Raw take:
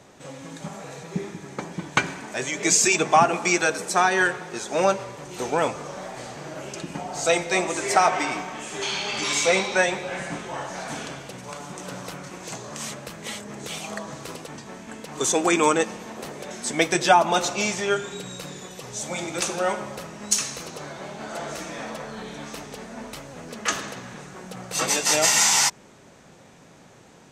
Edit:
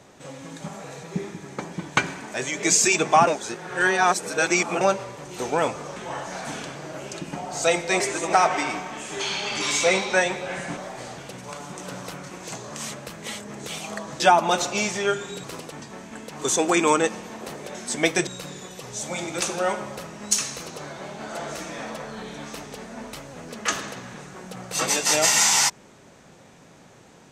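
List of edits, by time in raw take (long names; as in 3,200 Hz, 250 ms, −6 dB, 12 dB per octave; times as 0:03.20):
0:03.27–0:04.81: reverse
0:05.96–0:06.37: swap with 0:10.39–0:11.18
0:07.62–0:07.95: reverse
0:17.03–0:18.27: move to 0:14.20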